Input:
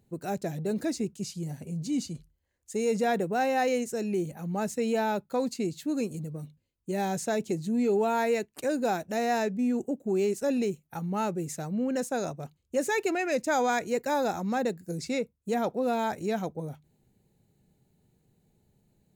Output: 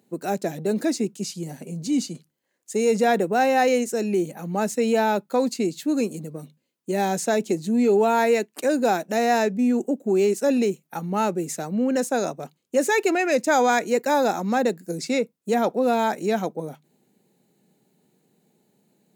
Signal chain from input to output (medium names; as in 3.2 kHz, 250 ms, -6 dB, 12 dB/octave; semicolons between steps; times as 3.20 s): high-pass 190 Hz 24 dB/octave; trim +7 dB